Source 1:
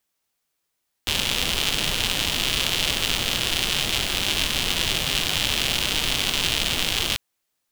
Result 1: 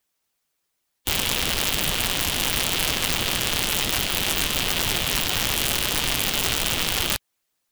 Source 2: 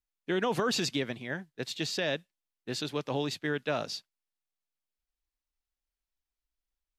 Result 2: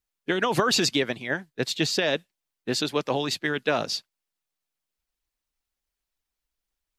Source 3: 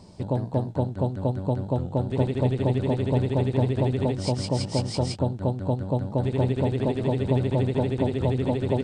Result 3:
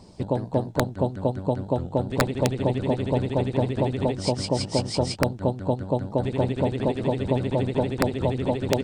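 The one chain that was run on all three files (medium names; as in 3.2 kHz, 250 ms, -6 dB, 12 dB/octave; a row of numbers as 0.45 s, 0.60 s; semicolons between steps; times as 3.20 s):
harmonic-percussive split harmonic -8 dB; integer overflow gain 13 dB; peak normalisation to -9 dBFS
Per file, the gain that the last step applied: +4.0 dB, +9.5 dB, +4.0 dB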